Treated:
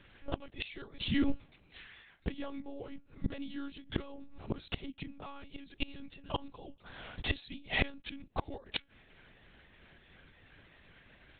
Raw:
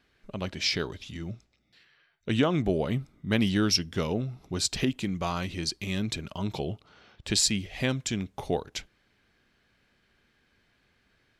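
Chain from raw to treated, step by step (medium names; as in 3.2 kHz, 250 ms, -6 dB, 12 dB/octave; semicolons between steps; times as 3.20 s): pitch shift switched off and on +2 st, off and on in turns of 175 ms; monotone LPC vocoder at 8 kHz 280 Hz; inverted gate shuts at -28 dBFS, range -25 dB; trim +9.5 dB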